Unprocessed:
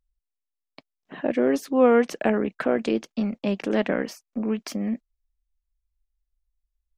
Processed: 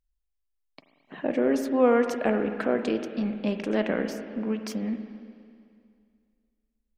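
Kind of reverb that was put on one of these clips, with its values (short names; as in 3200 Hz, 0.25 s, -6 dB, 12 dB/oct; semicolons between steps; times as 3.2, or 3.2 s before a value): spring tank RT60 2.3 s, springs 37/43/48 ms, chirp 70 ms, DRR 7 dB; gain -3 dB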